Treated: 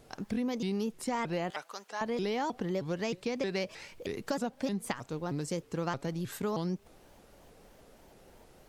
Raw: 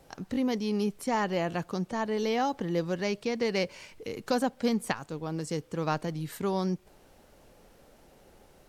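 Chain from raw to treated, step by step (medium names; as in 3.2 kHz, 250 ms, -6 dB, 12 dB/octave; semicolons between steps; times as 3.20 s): 1.50–2.01 s: high-pass 910 Hz 12 dB/octave; compression, threshold -29 dBFS, peak gain reduction 7.5 dB; vibrato with a chosen wave saw up 3.2 Hz, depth 250 cents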